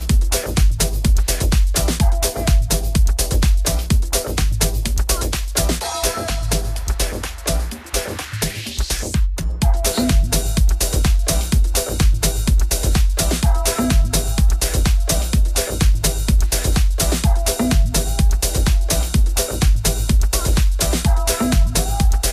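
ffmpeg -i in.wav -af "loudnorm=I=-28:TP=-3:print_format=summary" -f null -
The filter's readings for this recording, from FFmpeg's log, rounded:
Input Integrated:    -18.4 LUFS
Input True Peak:      -4.7 dBTP
Input LRA:             3.4 LU
Input Threshold:     -28.4 LUFS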